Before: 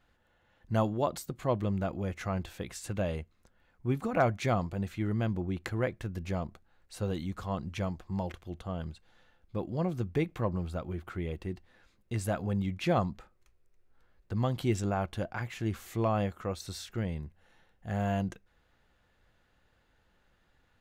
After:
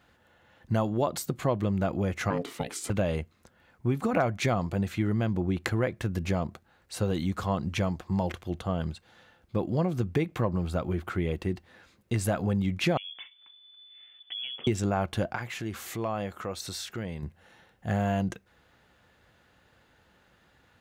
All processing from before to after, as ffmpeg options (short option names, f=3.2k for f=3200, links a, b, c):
-filter_complex "[0:a]asettb=1/sr,asplit=3[a][b][c];[a]atrim=end=2.304[d];[b]atrim=start=2.3:end=2.9,asetpts=PTS-STARTPTS,afade=t=in:d=0.004:c=qsin,afade=t=out:st=0.596:d=0.004:c=qsin,equalizer=f=9k:t=o:w=0.29:g=3,aeval=exprs='val(0)*sin(2*PI*350*n/s)':c=same[e];[c]atrim=start=2.896[f];[d][e]acrossfade=d=0.004:c1=hsin:c2=qsin[g];[g][f]acrossfade=d=0.004:c1=qsin:c2=hsin,asettb=1/sr,asplit=3[h][i][j];[h]atrim=end=12.974[k];[i]atrim=start=12.97:end=14.67,asetpts=PTS-STARTPTS,afade=t=in:d=0.004:c=qsin,afade=t=out:st=1.696:d=0.004:c=qsin,acompressor=threshold=-45dB:ratio=4:attack=3.2:release=140:knee=1:detection=peak,lowpass=f=3k:t=q:w=0.5098,lowpass=f=3k:t=q:w=0.6013,lowpass=f=3k:t=q:w=0.9,lowpass=f=3k:t=q:w=2.563,afreqshift=-3500[l];[j]atrim=start=14.666[m];[k][l]acrossfade=d=0.004:c1=hsin:c2=qsin[n];[n][m]acrossfade=d=0.004:c1=qsin:c2=hsin,asettb=1/sr,asplit=3[o][p][q];[o]atrim=end=15.354[r];[p]atrim=start=15.35:end=17.23,asetpts=PTS-STARTPTS,afade=t=in:d=0.004:c=qsin,afade=t=out:st=1.876:d=0.004:c=qsin,lowshelf=f=230:g=-6.5,acompressor=threshold=-43dB:ratio=2:attack=3.2:release=140:knee=1:detection=peak[s];[q]atrim=start=17.226[t];[r][s]acrossfade=d=0.004:c1=hsin:c2=qsin[u];[u][t]acrossfade=d=0.004:c1=qsin:c2=hsin,acompressor=threshold=-31dB:ratio=5,highpass=78,volume=8.5dB"